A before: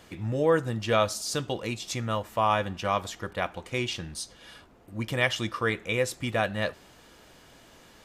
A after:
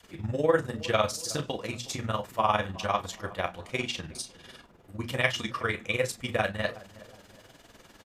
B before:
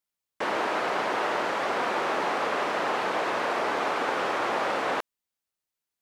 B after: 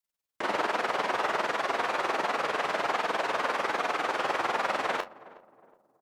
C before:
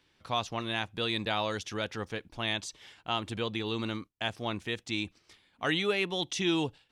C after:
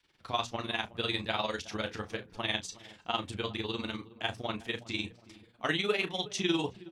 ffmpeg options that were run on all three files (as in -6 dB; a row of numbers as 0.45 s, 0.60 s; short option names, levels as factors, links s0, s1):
-filter_complex "[0:a]tremolo=f=20:d=0.84,adynamicequalizer=threshold=0.00708:dfrequency=300:dqfactor=0.76:tfrequency=300:tqfactor=0.76:attack=5:release=100:ratio=0.375:range=2:mode=cutabove:tftype=bell,flanger=delay=4.1:depth=7.3:regen=-47:speed=1.3:shape=sinusoidal,bandreject=f=60:t=h:w=6,bandreject=f=120:t=h:w=6,bandreject=f=180:t=h:w=6,bandreject=f=240:t=h:w=6,asplit=2[s0][s1];[s1]adelay=33,volume=0.282[s2];[s0][s2]amix=inputs=2:normalize=0,asplit=2[s3][s4];[s4]adelay=367,lowpass=f=870:p=1,volume=0.141,asplit=2[s5][s6];[s6]adelay=367,lowpass=f=870:p=1,volume=0.47,asplit=2[s7][s8];[s8]adelay=367,lowpass=f=870:p=1,volume=0.47,asplit=2[s9][s10];[s10]adelay=367,lowpass=f=870:p=1,volume=0.47[s11];[s3][s5][s7][s9][s11]amix=inputs=5:normalize=0,volume=2.11"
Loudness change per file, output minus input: -1.5 LU, -1.5 LU, -1.5 LU